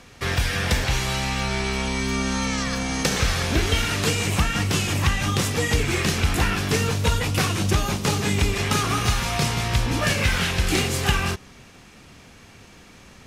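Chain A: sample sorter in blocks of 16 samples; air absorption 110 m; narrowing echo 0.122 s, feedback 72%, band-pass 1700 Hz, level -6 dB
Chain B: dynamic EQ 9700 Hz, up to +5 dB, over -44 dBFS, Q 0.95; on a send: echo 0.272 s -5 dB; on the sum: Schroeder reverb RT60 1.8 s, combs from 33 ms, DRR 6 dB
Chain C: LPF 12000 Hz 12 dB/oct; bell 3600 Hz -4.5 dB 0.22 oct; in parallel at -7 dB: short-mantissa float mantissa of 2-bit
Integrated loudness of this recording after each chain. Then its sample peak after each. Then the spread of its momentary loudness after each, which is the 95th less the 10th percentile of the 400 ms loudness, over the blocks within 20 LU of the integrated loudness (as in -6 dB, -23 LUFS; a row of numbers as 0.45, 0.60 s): -24.0, -20.0, -19.5 LUFS; -8.0, -5.5, -4.5 dBFS; 3, 4, 3 LU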